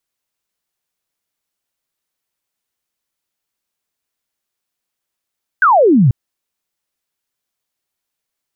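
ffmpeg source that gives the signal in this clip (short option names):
-f lavfi -i "aevalsrc='0.473*clip(t/0.002,0,1)*clip((0.49-t)/0.002,0,1)*sin(2*PI*1600*0.49/log(110/1600)*(exp(log(110/1600)*t/0.49)-1))':d=0.49:s=44100"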